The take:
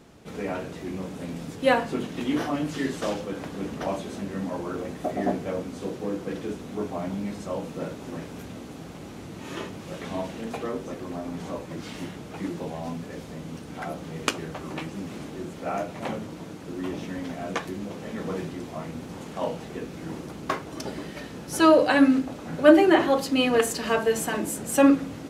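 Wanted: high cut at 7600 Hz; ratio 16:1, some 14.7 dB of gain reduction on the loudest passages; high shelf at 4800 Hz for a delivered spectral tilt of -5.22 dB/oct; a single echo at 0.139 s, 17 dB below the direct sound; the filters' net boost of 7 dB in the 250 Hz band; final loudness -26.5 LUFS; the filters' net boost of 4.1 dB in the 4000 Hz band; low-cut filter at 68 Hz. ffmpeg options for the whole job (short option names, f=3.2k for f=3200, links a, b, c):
-af "highpass=68,lowpass=7.6k,equalizer=f=250:t=o:g=8.5,equalizer=f=4k:t=o:g=8.5,highshelf=f=4.8k:g=-5.5,acompressor=threshold=-20dB:ratio=16,aecho=1:1:139:0.141,volume=2dB"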